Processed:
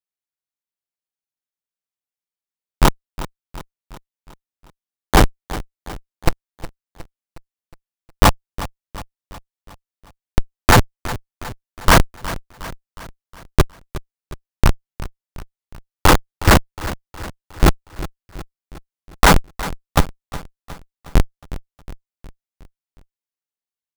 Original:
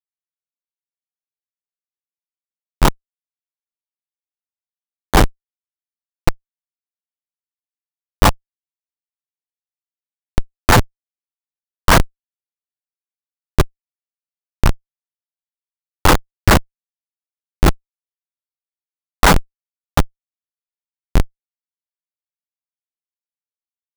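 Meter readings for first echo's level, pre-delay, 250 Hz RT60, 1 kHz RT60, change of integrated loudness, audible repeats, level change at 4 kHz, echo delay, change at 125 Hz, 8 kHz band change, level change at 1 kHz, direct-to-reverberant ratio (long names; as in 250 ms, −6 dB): −15.5 dB, no reverb audible, no reverb audible, no reverb audible, −1.5 dB, 4, 0.0 dB, 363 ms, 0.0 dB, 0.0 dB, 0.0 dB, no reverb audible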